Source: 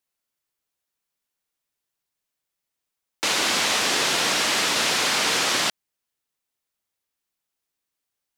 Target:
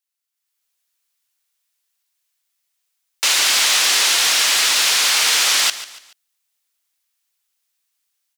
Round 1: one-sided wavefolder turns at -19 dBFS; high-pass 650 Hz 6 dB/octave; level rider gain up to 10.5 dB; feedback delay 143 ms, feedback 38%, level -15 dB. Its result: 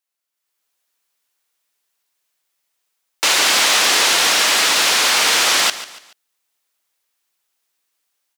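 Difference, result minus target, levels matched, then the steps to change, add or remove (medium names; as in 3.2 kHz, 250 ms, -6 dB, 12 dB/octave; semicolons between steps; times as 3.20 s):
500 Hz band +8.0 dB
change: high-pass 2.5 kHz 6 dB/octave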